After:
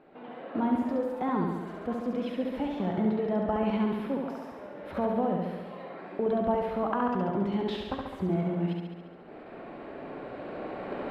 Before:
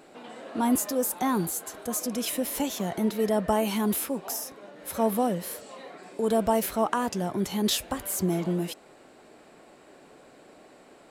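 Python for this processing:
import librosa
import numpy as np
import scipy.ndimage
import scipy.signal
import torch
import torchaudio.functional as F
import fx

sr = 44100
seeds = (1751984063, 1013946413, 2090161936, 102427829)

p1 = fx.recorder_agc(x, sr, target_db=-17.0, rise_db_per_s=8.2, max_gain_db=30)
p2 = fx.peak_eq(p1, sr, hz=13000.0, db=-9.0, octaves=1.3)
p3 = fx.level_steps(p2, sr, step_db=15)
p4 = p2 + F.gain(torch.from_numpy(p3), 1.5).numpy()
p5 = fx.air_absorb(p4, sr, metres=440.0)
p6 = p5 + fx.room_flutter(p5, sr, wall_m=11.9, rt60_s=1.2, dry=0)
y = F.gain(torch.from_numpy(p6), -7.5).numpy()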